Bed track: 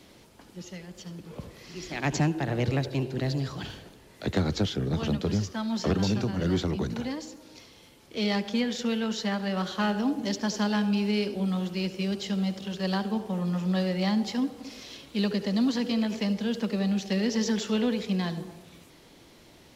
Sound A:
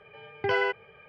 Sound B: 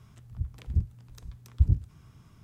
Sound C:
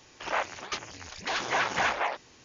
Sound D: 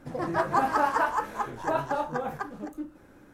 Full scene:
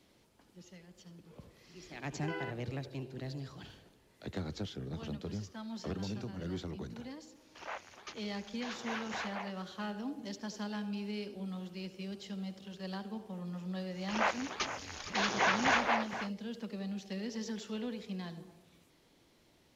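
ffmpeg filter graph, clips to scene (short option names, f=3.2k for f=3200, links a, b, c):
-filter_complex "[3:a]asplit=2[a][b];[0:a]volume=-13dB[c];[b]asplit=2[d][e];[e]adelay=466.5,volume=-11dB,highshelf=f=4k:g=-10.5[f];[d][f]amix=inputs=2:normalize=0[g];[1:a]atrim=end=1.08,asetpts=PTS-STARTPTS,volume=-15.5dB,afade=t=in:d=0.004:c=hsin,afade=t=out:st=1.076:d=0.004:c=hsin,adelay=1790[h];[a]atrim=end=2.44,asetpts=PTS-STARTPTS,volume=-13.5dB,afade=t=in:d=0.004:c=hsin,afade=t=out:st=2.436:d=0.004:c=hsin,adelay=7350[i];[g]atrim=end=2.44,asetpts=PTS-STARTPTS,volume=-2dB,afade=t=in:d=0.1,afade=t=out:st=2.34:d=0.1,adelay=13880[j];[c][h][i][j]amix=inputs=4:normalize=0"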